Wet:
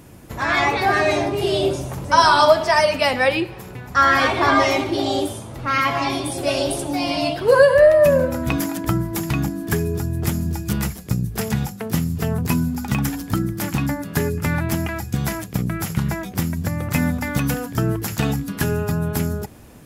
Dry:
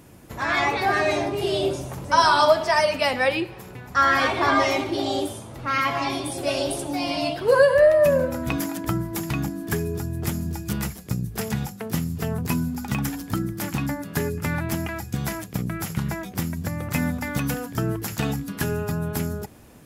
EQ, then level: low shelf 120 Hz +3.5 dB; +3.5 dB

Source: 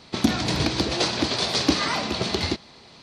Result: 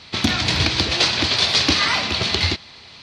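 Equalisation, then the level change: bell 90 Hz +9 dB 0.58 oct; low shelf 160 Hz +6.5 dB; bell 2800 Hz +14 dB 3 oct; -4.5 dB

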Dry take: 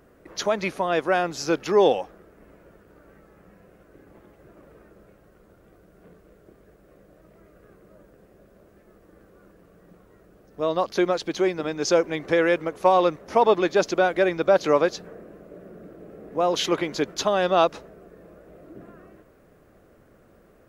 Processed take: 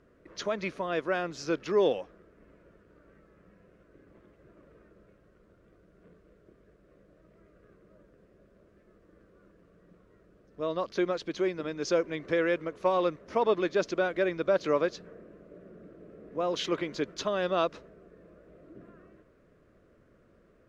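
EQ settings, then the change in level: air absorption 73 m; bell 800 Hz -11 dB 0.29 oct; -6.0 dB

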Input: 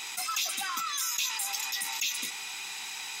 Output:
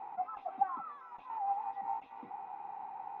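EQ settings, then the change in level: ladder low-pass 870 Hz, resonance 75%; +8.0 dB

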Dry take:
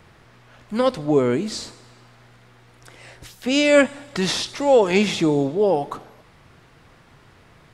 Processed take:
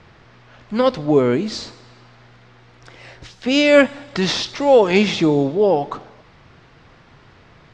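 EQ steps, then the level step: LPF 6000 Hz 24 dB/oct; +3.0 dB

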